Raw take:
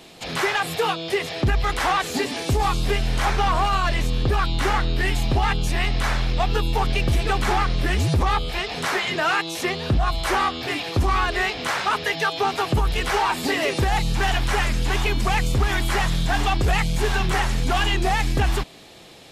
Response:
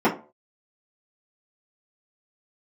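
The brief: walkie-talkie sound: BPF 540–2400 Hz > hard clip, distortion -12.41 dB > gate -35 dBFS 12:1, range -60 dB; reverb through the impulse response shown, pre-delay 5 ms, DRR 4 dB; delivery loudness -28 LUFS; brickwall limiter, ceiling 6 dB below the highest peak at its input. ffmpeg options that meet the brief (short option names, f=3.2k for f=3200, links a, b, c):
-filter_complex "[0:a]alimiter=limit=-18.5dB:level=0:latency=1,asplit=2[a][b];[1:a]atrim=start_sample=2205,adelay=5[c];[b][c]afir=irnorm=-1:irlink=0,volume=-22.5dB[d];[a][d]amix=inputs=2:normalize=0,highpass=540,lowpass=2.4k,asoftclip=type=hard:threshold=-24.5dB,agate=range=-60dB:threshold=-35dB:ratio=12,volume=2.5dB"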